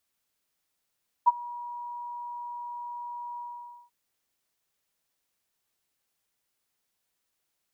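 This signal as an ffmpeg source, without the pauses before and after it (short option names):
-f lavfi -i "aevalsrc='0.237*sin(2*PI*961*t)':d=2.639:s=44100,afade=t=in:d=0.021,afade=t=out:st=0.021:d=0.027:silence=0.075,afade=t=out:st=2.12:d=0.519"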